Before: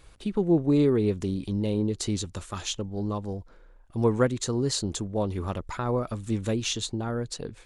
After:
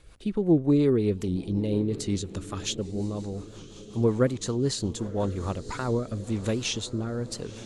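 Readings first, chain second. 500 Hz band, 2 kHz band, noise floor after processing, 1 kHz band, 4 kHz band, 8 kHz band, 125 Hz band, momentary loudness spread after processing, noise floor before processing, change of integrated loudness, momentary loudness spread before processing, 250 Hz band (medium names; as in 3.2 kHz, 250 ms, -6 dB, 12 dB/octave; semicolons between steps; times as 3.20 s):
0.0 dB, -0.5 dB, -46 dBFS, -3.0 dB, -1.0 dB, -1.5 dB, +0.5 dB, 11 LU, -53 dBFS, 0.0 dB, 11 LU, +0.5 dB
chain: echo that smears into a reverb 1049 ms, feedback 53%, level -15.5 dB; rotary cabinet horn 5.5 Hz, later 1 Hz, at 5.11 s; warped record 78 rpm, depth 100 cents; trim +1.5 dB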